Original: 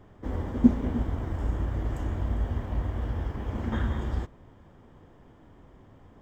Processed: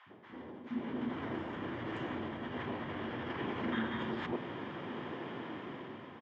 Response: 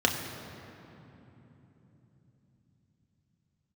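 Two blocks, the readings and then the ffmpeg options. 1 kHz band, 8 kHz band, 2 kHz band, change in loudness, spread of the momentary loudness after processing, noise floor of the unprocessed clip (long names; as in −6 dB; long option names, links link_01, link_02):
0.0 dB, can't be measured, +3.5 dB, −10.0 dB, 10 LU, −55 dBFS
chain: -filter_complex "[0:a]areverse,acompressor=threshold=-40dB:ratio=12,areverse,acrossover=split=220|930[link_01][link_02][link_03];[link_01]adelay=60[link_04];[link_02]adelay=100[link_05];[link_04][link_05][link_03]amix=inputs=3:normalize=0,asplit=2[link_06][link_07];[link_07]alimiter=level_in=18dB:limit=-24dB:level=0:latency=1:release=28,volume=-18dB,volume=1dB[link_08];[link_06][link_08]amix=inputs=2:normalize=0,crystalizer=i=9:c=0,dynaudnorm=framelen=260:gausssize=7:maxgain=11dB,highpass=frequency=140:width=0.5412,highpass=frequency=140:width=1.3066,equalizer=frequency=240:width_type=q:width=4:gain=5,equalizer=frequency=350:width_type=q:width=4:gain=6,equalizer=frequency=1000:width_type=q:width=4:gain=4,lowpass=frequency=3000:width=0.5412,lowpass=frequency=3000:width=1.3066,volume=-6dB"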